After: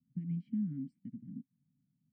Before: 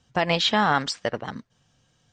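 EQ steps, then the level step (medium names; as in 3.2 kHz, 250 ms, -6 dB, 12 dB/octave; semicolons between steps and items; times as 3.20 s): vowel filter i; inverse Chebyshev band-stop 410–7100 Hz, stop band 50 dB; resonant low shelf 130 Hz -8.5 dB, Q 1.5; +13.5 dB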